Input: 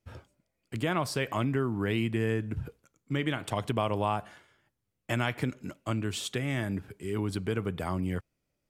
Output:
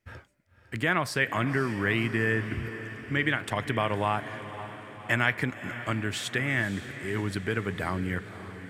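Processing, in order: bell 1800 Hz +12 dB 0.77 oct; diffused feedback echo 0.542 s, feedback 58%, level -12.5 dB

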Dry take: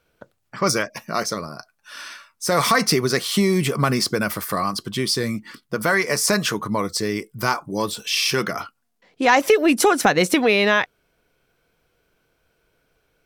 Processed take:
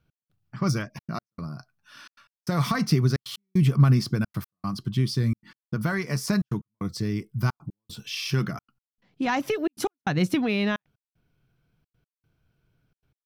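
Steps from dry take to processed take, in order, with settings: ten-band EQ 125 Hz +10 dB, 500 Hz -12 dB, 1000 Hz -5 dB, 2000 Hz -8 dB, 4000 Hz -4 dB, 8000 Hz -11 dB, 16000 Hz -10 dB; step gate "x..xxxxxxx." 152 bpm -60 dB; gain -1.5 dB

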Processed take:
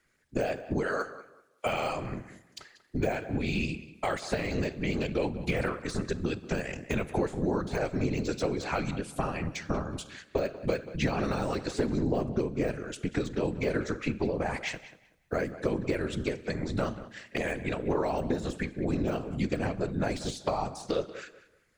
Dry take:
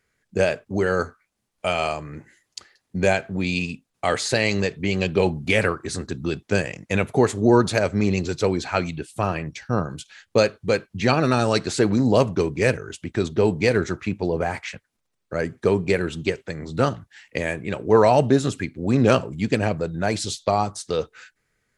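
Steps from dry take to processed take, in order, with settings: 0.83–1.66 HPF 490 Hz; de-esser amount 80%; 12–12.67 tilt shelf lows +3.5 dB; compressor 6:1, threshold -26 dBFS, peak gain reduction 14.5 dB; Schroeder reverb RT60 0.9 s, combs from 30 ms, DRR 18 dB; 14.72–15.51 companded quantiser 8-bit; whisperiser; on a send: tape echo 0.189 s, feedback 25%, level -14 dB, low-pass 3100 Hz

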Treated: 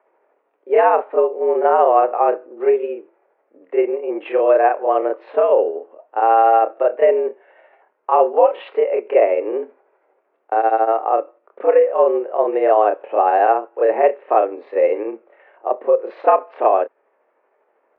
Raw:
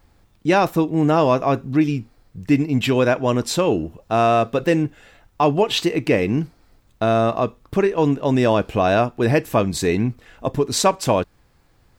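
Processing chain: tilt shelf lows +9 dB, about 840 Hz; mistuned SSB +100 Hz 370–2400 Hz; granular stretch 1.5×, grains 0.158 s; gain +2.5 dB

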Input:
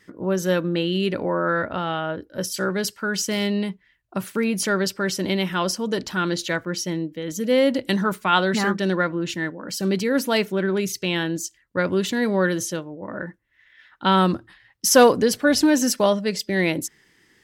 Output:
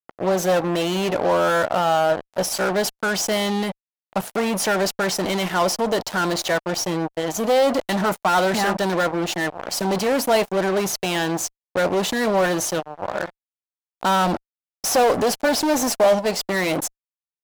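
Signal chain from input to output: high shelf 2200 Hz +6.5 dB; fuzz box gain 26 dB, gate -32 dBFS; bell 720 Hz +13 dB 1.1 oct; gain -8 dB

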